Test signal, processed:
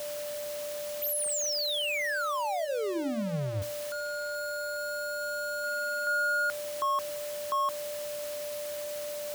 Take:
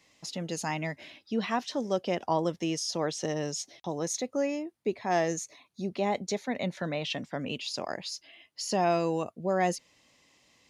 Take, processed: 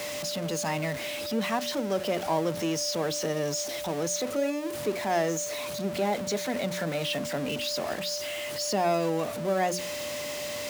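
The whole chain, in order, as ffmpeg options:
-filter_complex "[0:a]aeval=exprs='val(0)+0.5*0.0316*sgn(val(0))':c=same,highpass=64,aeval=exprs='val(0)+0.0224*sin(2*PI*590*n/s)':c=same,acrossover=split=130|1400[s0][s1][s2];[s1]aeval=exprs='val(0)*gte(abs(val(0)),0.00631)':c=same[s3];[s0][s3][s2]amix=inputs=3:normalize=0,bandreject=f=60:t=h:w=6,bandreject=f=120:t=h:w=6,bandreject=f=180:t=h:w=6,bandreject=f=240:t=h:w=6,bandreject=f=300:t=h:w=6,bandreject=f=360:t=h:w=6,volume=0.841"

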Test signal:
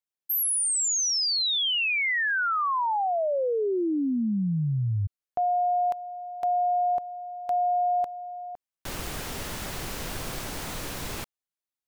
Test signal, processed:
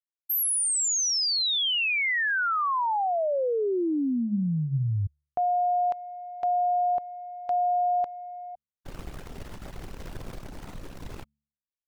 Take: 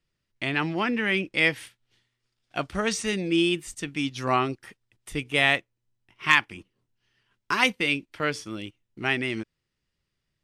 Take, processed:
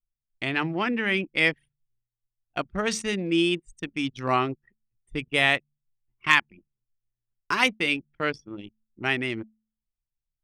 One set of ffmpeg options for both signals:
-af "bandreject=f=72.83:t=h:w=4,bandreject=f=145.66:t=h:w=4,bandreject=f=218.49:t=h:w=4,anlmdn=15.8"

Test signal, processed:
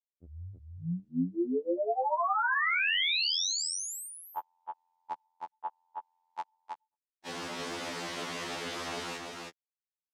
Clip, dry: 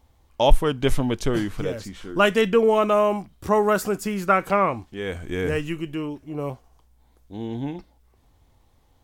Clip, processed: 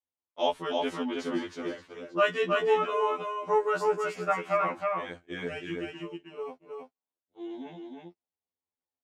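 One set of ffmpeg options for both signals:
-filter_complex "[0:a]agate=range=0.0398:threshold=0.0282:ratio=16:detection=peak,adynamicequalizer=threshold=0.0224:dfrequency=470:dqfactor=1.7:tfrequency=470:tqfactor=1.7:attack=5:release=100:ratio=0.375:range=2:mode=cutabove:tftype=bell,highpass=240,lowpass=5500,asplit=2[s0][s1];[s1]aecho=0:1:318:0.668[s2];[s0][s2]amix=inputs=2:normalize=0,afftfilt=real='re*2*eq(mod(b,4),0)':imag='im*2*eq(mod(b,4),0)':win_size=2048:overlap=0.75,volume=0.562"

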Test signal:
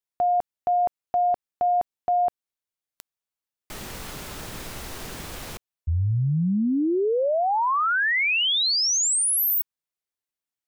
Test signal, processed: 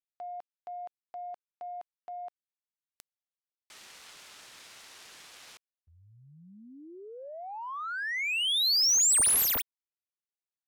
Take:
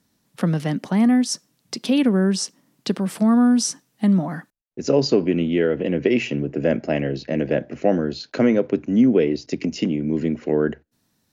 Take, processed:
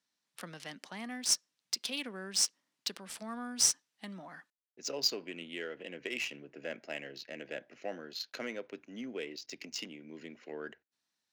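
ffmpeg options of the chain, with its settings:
-af "aderivative,adynamicsmooth=sensitivity=8:basefreq=3300,volume=1.19"

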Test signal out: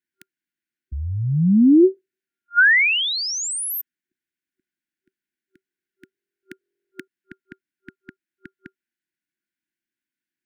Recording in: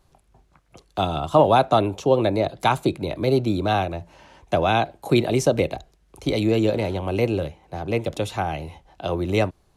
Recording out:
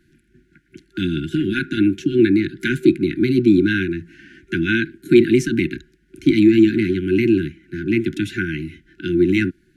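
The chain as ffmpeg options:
-filter_complex "[0:a]apsyclip=5.62,acrossover=split=190 2000:gain=0.141 1 0.158[s0][s1][s2];[s0][s1][s2]amix=inputs=3:normalize=0,afftfilt=real='re*(1-between(b*sr/4096,380,1400))':imag='im*(1-between(b*sr/4096,380,1400))':win_size=4096:overlap=0.75,volume=0.841"

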